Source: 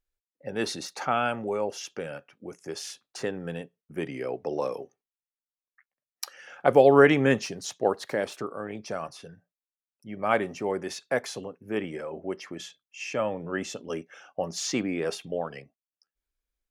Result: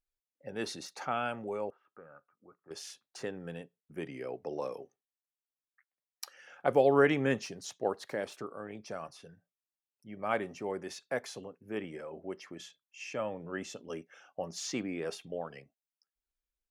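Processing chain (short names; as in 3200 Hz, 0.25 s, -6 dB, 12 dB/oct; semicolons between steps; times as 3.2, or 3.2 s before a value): 1.7–2.71 ladder low-pass 1300 Hz, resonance 80%; gain -7.5 dB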